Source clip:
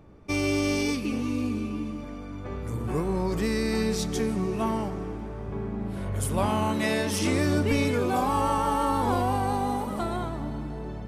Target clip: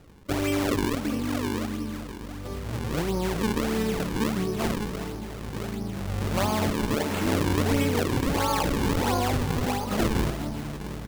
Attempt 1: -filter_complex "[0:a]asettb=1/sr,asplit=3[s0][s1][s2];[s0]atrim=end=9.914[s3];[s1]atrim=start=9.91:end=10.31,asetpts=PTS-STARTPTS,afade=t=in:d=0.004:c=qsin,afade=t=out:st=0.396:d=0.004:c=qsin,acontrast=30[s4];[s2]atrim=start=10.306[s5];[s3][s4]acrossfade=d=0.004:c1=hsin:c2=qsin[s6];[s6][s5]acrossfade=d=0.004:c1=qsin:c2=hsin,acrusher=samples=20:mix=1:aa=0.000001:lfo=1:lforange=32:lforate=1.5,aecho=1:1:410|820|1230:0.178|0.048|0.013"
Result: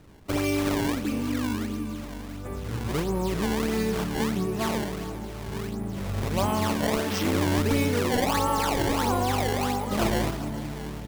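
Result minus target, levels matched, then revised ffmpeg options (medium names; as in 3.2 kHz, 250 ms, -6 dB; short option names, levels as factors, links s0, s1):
decimation with a swept rate: distortion -4 dB
-filter_complex "[0:a]asettb=1/sr,asplit=3[s0][s1][s2];[s0]atrim=end=9.914[s3];[s1]atrim=start=9.91:end=10.31,asetpts=PTS-STARTPTS,afade=t=in:d=0.004:c=qsin,afade=t=out:st=0.396:d=0.004:c=qsin,acontrast=30[s4];[s2]atrim=start=10.306[s5];[s3][s4]acrossfade=d=0.004:c1=hsin:c2=qsin[s6];[s6][s5]acrossfade=d=0.004:c1=qsin:c2=hsin,acrusher=samples=39:mix=1:aa=0.000001:lfo=1:lforange=62.4:lforate=1.5,aecho=1:1:410|820|1230:0.178|0.048|0.013"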